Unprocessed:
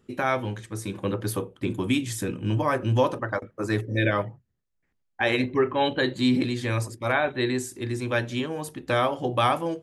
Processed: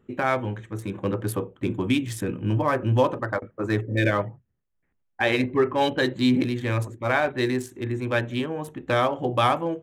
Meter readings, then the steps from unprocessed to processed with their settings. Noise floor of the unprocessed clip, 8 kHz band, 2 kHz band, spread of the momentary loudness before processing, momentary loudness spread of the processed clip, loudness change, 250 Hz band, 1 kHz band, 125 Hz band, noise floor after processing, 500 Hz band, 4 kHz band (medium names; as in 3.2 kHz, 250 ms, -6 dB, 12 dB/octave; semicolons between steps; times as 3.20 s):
-75 dBFS, -4.0 dB, +1.0 dB, 8 LU, 8 LU, +1.0 dB, +1.5 dB, +1.0 dB, +1.5 dB, -73 dBFS, +1.5 dB, -0.5 dB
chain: local Wiener filter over 9 samples; trim +1.5 dB